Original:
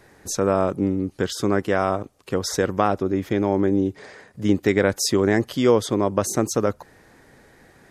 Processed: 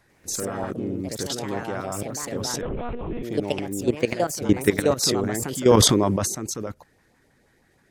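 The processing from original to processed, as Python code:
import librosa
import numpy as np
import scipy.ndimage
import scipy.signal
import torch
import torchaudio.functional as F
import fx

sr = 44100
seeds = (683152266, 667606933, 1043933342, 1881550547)

y = fx.level_steps(x, sr, step_db=16)
y = fx.filter_lfo_notch(y, sr, shape='saw_up', hz=6.3, low_hz=300.0, high_hz=1900.0, q=1.3)
y = fx.echo_pitch(y, sr, ms=99, semitones=3, count=2, db_per_echo=-3.0)
y = fx.lpc_monotone(y, sr, seeds[0], pitch_hz=240.0, order=10, at=(2.61, 3.23))
y = fx.sustainer(y, sr, db_per_s=22.0, at=(5.02, 6.27), fade=0.02)
y = y * 10.0 ** (3.0 / 20.0)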